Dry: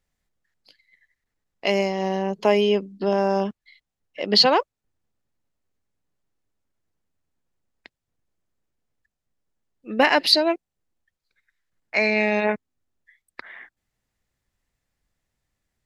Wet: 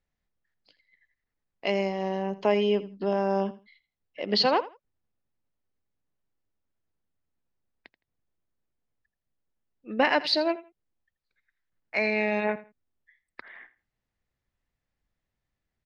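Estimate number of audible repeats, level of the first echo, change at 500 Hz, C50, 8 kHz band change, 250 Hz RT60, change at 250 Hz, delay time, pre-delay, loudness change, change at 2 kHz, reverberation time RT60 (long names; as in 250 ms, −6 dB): 2, −17.0 dB, −5.0 dB, no reverb audible, below −10 dB, no reverb audible, −4.5 dB, 82 ms, no reverb audible, −6.0 dB, −5.5 dB, no reverb audible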